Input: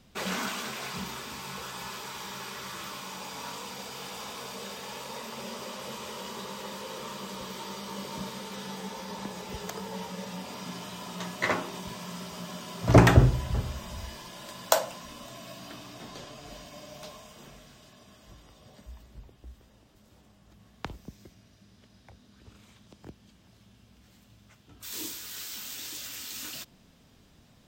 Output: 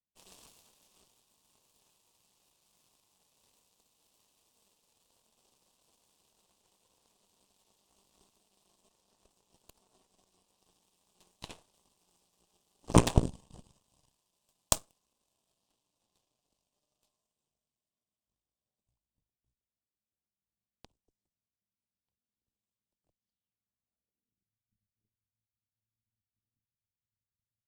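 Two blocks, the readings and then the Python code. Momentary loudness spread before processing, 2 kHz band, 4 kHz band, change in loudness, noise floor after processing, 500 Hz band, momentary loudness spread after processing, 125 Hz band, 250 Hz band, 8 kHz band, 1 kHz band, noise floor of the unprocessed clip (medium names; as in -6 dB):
17 LU, -17.0 dB, -10.5 dB, +3.5 dB, under -85 dBFS, -9.5 dB, 6 LU, -10.0 dB, -6.5 dB, -4.0 dB, -10.5 dB, -60 dBFS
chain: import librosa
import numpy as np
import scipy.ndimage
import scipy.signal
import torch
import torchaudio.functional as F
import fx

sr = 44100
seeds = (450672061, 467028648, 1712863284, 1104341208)

y = fx.filter_sweep_lowpass(x, sr, from_hz=8800.0, to_hz=110.0, start_s=23.11, end_s=24.57, q=4.3)
y = fx.cheby_harmonics(y, sr, harmonics=(4, 7), levels_db=(-11, -17), full_scale_db=2.0)
y = fx.band_shelf(y, sr, hz=1700.0, db=-10.5, octaves=1.0)
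y = y * 10.0 ** (-4.5 / 20.0)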